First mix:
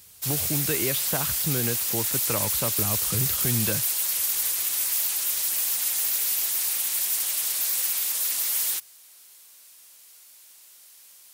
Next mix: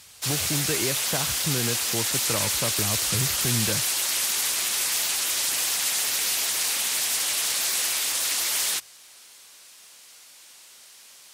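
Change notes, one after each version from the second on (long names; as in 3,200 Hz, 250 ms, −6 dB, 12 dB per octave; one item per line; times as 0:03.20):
background +8.5 dB
master: add high-frequency loss of the air 52 metres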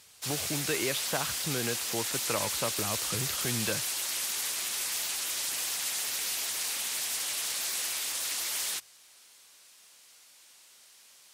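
speech: add low-shelf EQ 220 Hz −12 dB
background −7.5 dB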